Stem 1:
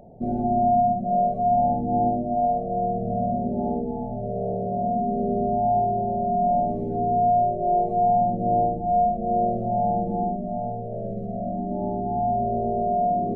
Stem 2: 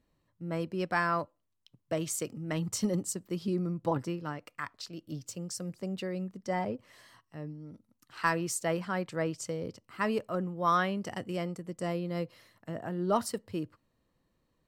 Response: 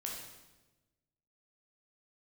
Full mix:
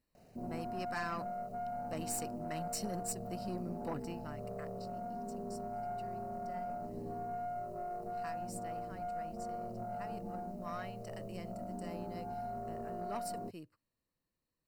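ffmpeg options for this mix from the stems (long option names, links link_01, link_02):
-filter_complex "[0:a]alimiter=limit=-19.5dB:level=0:latency=1:release=138,acrusher=bits=8:mix=0:aa=0.000001,adelay=150,volume=-13dB[link_01];[1:a]highshelf=frequency=2800:gain=10,bandreject=frequency=6400:width=5.2,volume=-2dB,afade=type=out:start_time=4.01:duration=0.78:silence=0.251189,afade=type=in:start_time=10.61:duration=0.49:silence=0.446684[link_02];[link_01][link_02]amix=inputs=2:normalize=0,aeval=exprs='(tanh(35.5*val(0)+0.4)-tanh(0.4))/35.5':channel_layout=same,asuperstop=centerf=3400:order=4:qfactor=4.6"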